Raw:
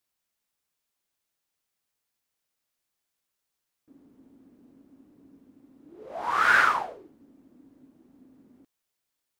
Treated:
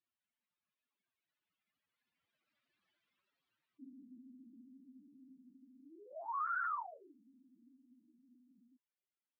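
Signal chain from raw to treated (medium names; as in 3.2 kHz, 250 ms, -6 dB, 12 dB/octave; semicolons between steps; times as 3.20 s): spectral contrast enhancement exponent 3.1; Doppler pass-by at 2.85 s, 15 m/s, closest 9 m; peak limiter -38.5 dBFS, peak gain reduction 10.5 dB; cabinet simulation 130–3400 Hz, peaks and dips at 200 Hz +3 dB, 470 Hz -9 dB, 800 Hz -8 dB; trim +7.5 dB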